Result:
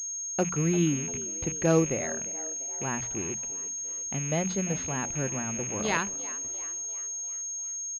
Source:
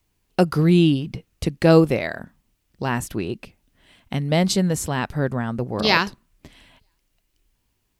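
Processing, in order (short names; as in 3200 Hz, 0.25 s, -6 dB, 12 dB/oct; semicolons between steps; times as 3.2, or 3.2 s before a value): rattling part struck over -32 dBFS, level -22 dBFS; notches 60/120/180 Hz; frequency-shifting echo 0.346 s, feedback 54%, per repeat +73 Hz, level -17 dB; pulse-width modulation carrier 6500 Hz; gain -9 dB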